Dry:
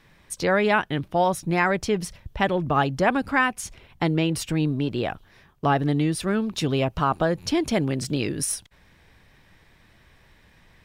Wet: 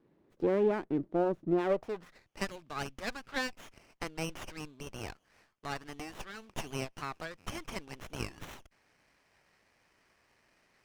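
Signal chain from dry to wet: band-pass sweep 340 Hz -> 3100 Hz, 1.58–2.32; running maximum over 9 samples

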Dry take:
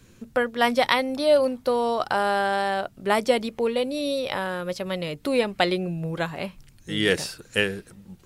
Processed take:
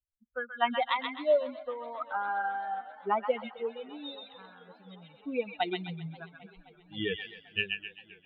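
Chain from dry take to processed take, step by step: per-bin expansion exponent 3; rippled Chebyshev low-pass 3800 Hz, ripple 6 dB; thin delay 0.13 s, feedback 36%, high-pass 1400 Hz, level -3.5 dB; warbling echo 0.264 s, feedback 80%, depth 142 cents, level -23 dB

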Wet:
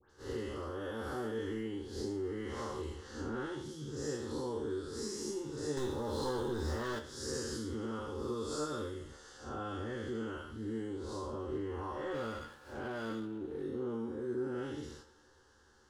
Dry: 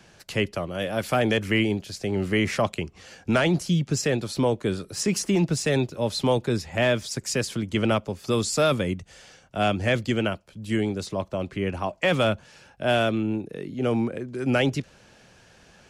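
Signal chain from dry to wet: time blur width 0.189 s; high shelf 9100 Hz -11 dB; dispersion highs, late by 0.105 s, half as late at 2200 Hz; 5.77–6.99 sample leveller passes 3; compressor 6:1, threshold -36 dBFS, peak gain reduction 17 dB; gate -52 dBFS, range -10 dB; fixed phaser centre 650 Hz, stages 6; resonator 75 Hz, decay 0.18 s, harmonics all, mix 90%; thinning echo 0.136 s, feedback 79%, high-pass 260 Hz, level -22 dB; 12.14–13.63 running maximum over 5 samples; gain +10 dB

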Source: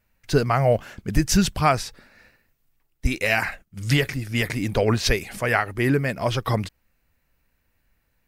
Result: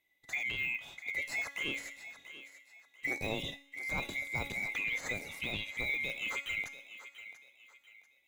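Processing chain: band-swap scrambler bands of 2000 Hz; de-esser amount 75%; resonator 280 Hz, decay 0.65 s, mix 70%; on a send: thinning echo 0.689 s, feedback 34%, high-pass 440 Hz, level -13 dB

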